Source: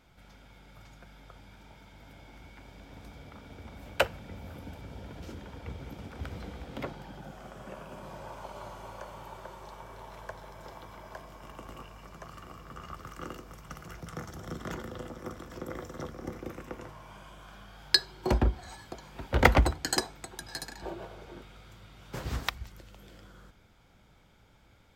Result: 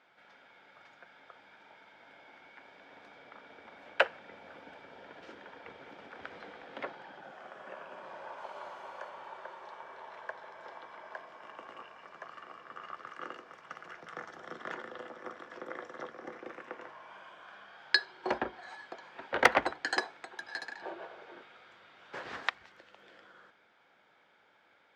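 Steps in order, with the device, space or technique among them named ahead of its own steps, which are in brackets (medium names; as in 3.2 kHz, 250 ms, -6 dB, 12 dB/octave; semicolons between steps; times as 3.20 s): 8.38–9.09 s: treble shelf 10 kHz +11.5 dB; megaphone (band-pass 470–3300 Hz; peaking EQ 1.7 kHz +6 dB 0.34 oct; hard clipper -9.5 dBFS, distortion -14 dB)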